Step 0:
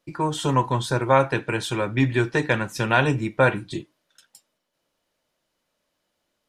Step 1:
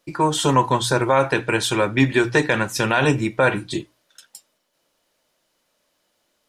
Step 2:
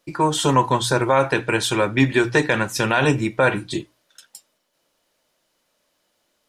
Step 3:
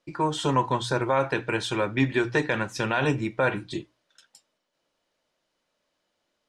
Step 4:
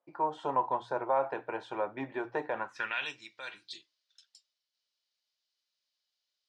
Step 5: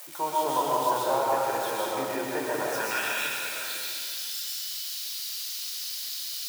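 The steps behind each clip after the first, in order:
tone controls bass -4 dB, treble +3 dB; hum notches 60/120 Hz; peak limiter -11 dBFS, peak gain reduction 7.5 dB; trim +6 dB
no audible change
distance through air 66 m; trim -6 dB
band-pass sweep 750 Hz -> 4.6 kHz, 2.56–3.18 s
zero-crossing glitches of -30.5 dBFS; algorithmic reverb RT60 2.1 s, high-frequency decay 0.8×, pre-delay 85 ms, DRR -5 dB

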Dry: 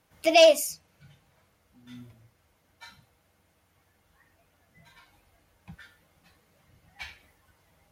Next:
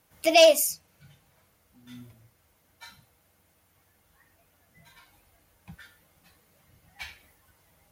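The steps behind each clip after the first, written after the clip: treble shelf 9.1 kHz +10.5 dB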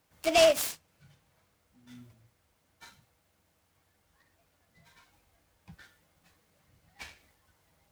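delay time shaken by noise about 2.1 kHz, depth 0.034 ms; trim -5 dB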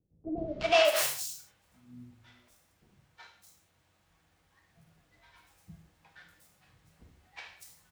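sample-rate reducer 12 kHz, jitter 20%; three bands offset in time lows, mids, highs 370/610 ms, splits 410/5200 Hz; gated-style reverb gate 190 ms falling, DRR 3 dB

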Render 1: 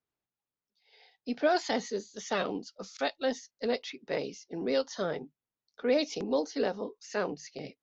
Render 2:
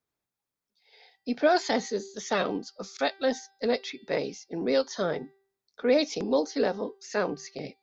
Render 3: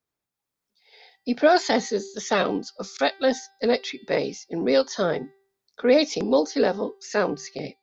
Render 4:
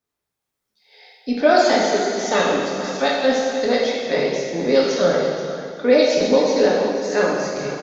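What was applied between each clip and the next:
band-stop 2.9 kHz, Q 11; de-hum 390.9 Hz, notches 13; trim +4 dB
level rider gain up to 5 dB
delay 481 ms -13 dB; plate-style reverb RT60 2 s, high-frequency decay 0.9×, DRR -3.5 dB

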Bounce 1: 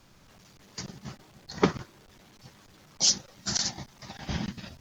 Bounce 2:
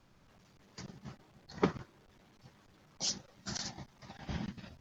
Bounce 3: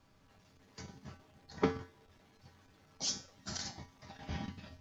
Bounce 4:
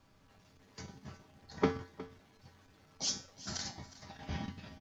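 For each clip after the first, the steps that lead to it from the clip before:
treble shelf 3.8 kHz -9 dB; trim -6.5 dB
feedback comb 89 Hz, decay 0.37 s, harmonics odd, mix 80%; trim +9 dB
delay 362 ms -17 dB; trim +1 dB

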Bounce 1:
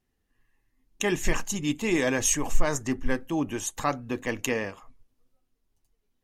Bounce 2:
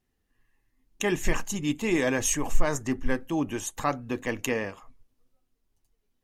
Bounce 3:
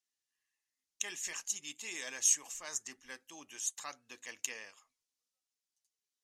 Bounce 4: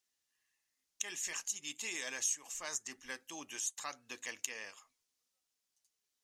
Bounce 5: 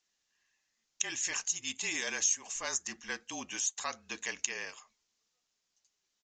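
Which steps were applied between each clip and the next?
dynamic bell 5.3 kHz, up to -3 dB, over -41 dBFS, Q 0.73
band-pass filter 6.3 kHz, Q 1.3
compression 2.5:1, threshold -43 dBFS, peak gain reduction 13 dB; trim +5 dB
frequency shift -36 Hz; resampled via 16 kHz; trim +6 dB

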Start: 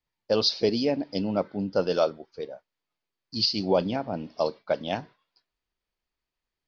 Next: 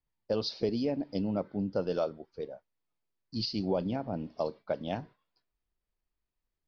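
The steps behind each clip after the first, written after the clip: tilt EQ -2 dB/octave; compression 2:1, threshold -23 dBFS, peak gain reduction 5 dB; trim -5.5 dB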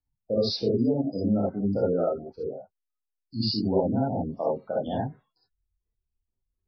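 spectral gate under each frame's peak -20 dB strong; gated-style reverb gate 90 ms rising, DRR -5.5 dB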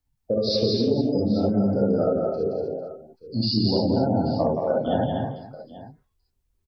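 compression, threshold -28 dBFS, peak gain reduction 10 dB; on a send: multi-tap echo 118/173/249/308/451/835 ms -19/-4/-6/-18/-16/-16.5 dB; on the sum: trim +7.5 dB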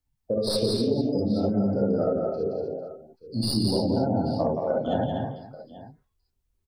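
tracing distortion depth 0.053 ms; trim -2.5 dB

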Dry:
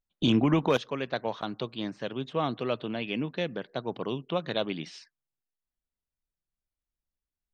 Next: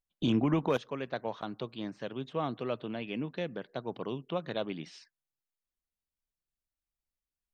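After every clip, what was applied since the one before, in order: dynamic bell 4.1 kHz, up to -5 dB, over -45 dBFS, Q 0.72; trim -4 dB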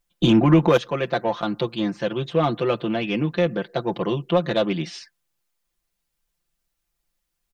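comb 5.8 ms, depth 77%; in parallel at -4 dB: saturation -29.5 dBFS, distortion -7 dB; on the sum: trim +8 dB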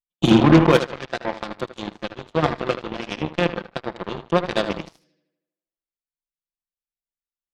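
tape echo 77 ms, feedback 64%, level -4 dB, low-pass 3.7 kHz; Chebyshev shaper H 3 -30 dB, 5 -21 dB, 7 -14 dB, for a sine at -3.5 dBFS; trim +1 dB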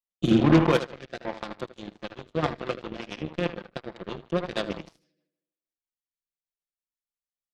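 rotary cabinet horn 1.2 Hz, later 6.3 Hz, at 1.89 s; trim -5 dB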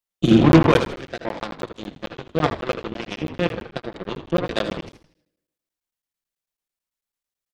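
on a send: frequency-shifting echo 81 ms, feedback 42%, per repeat -53 Hz, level -12 dB; on the sum: crackling interface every 0.11 s, samples 512, zero, from 0.52 s; trim +6 dB

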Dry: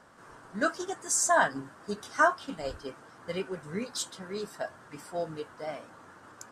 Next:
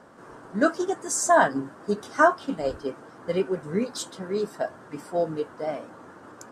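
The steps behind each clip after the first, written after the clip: peaking EQ 340 Hz +10 dB 2.9 oct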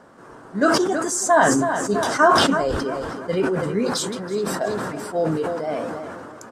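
feedback delay 327 ms, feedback 39%, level -14 dB; decay stretcher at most 25 dB/s; trim +2 dB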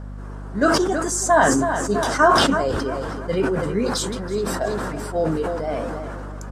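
hum 50 Hz, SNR 12 dB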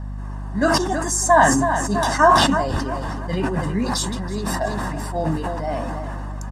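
comb 1.1 ms, depth 67%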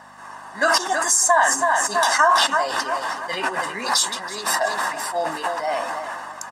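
high-pass 870 Hz 12 dB/octave; compression 3:1, threshold -23 dBFS, peak gain reduction 8.5 dB; trim +8 dB

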